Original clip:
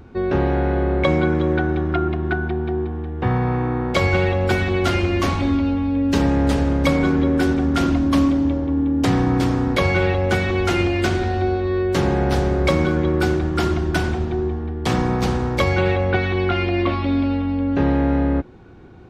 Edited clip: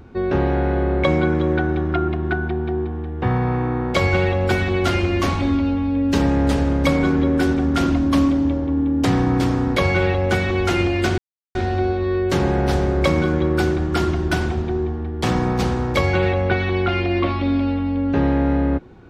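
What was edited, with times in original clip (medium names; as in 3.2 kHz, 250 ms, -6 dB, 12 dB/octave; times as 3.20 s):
11.18 s: insert silence 0.37 s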